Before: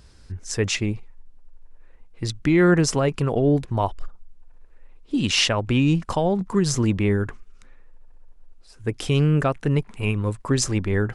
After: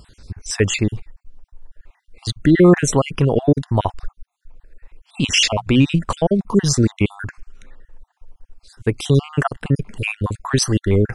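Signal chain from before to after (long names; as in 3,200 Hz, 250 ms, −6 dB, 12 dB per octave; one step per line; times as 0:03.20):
time-frequency cells dropped at random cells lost 45%
0:05.32–0:05.86: mains-hum notches 60/120/180 Hz
level +7 dB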